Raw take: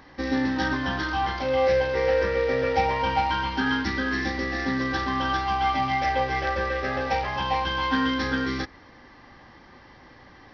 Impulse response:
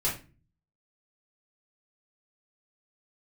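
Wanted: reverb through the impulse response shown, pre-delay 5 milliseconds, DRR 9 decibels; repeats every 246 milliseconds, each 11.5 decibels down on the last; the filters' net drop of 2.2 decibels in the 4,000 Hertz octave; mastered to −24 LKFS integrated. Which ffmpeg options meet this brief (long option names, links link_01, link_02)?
-filter_complex "[0:a]equalizer=frequency=4000:width_type=o:gain=-3,aecho=1:1:246|492|738:0.266|0.0718|0.0194,asplit=2[link_01][link_02];[1:a]atrim=start_sample=2205,adelay=5[link_03];[link_02][link_03]afir=irnorm=-1:irlink=0,volume=-17dB[link_04];[link_01][link_04]amix=inputs=2:normalize=0,volume=1dB"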